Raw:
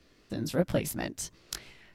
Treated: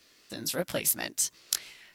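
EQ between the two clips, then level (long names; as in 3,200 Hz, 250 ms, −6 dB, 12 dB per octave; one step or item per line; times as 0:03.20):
spectral tilt +3.5 dB per octave
0.0 dB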